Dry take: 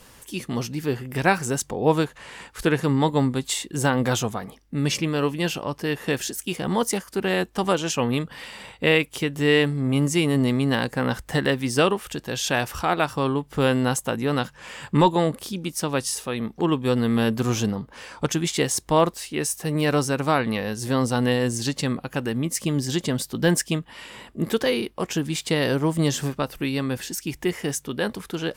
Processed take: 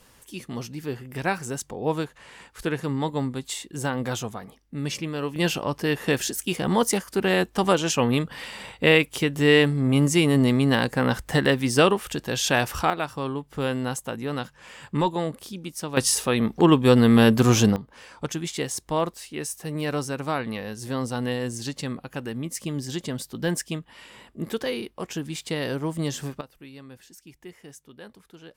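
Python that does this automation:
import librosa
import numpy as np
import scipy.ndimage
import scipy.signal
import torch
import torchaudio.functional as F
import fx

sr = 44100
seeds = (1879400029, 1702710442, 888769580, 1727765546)

y = fx.gain(x, sr, db=fx.steps((0.0, -6.0), (5.36, 1.5), (12.9, -6.0), (15.97, 5.5), (17.76, -6.0), (26.41, -18.5)))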